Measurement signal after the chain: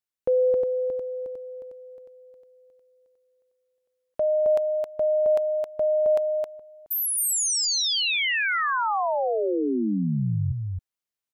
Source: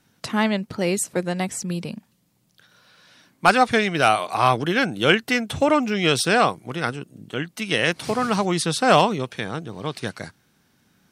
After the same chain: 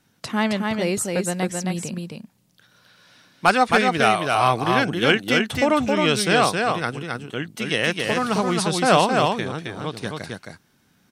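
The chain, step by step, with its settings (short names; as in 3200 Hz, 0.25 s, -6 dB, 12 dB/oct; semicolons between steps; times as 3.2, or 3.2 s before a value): echo 0.267 s -3.5 dB; gain -1 dB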